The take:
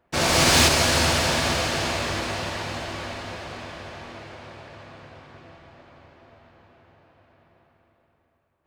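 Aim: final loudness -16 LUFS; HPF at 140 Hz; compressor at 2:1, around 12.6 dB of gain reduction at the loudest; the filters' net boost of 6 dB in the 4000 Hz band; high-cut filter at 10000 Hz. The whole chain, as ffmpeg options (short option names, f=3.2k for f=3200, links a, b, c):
-af "highpass=140,lowpass=10k,equalizer=f=4k:t=o:g=7.5,acompressor=threshold=-34dB:ratio=2,volume=13dB"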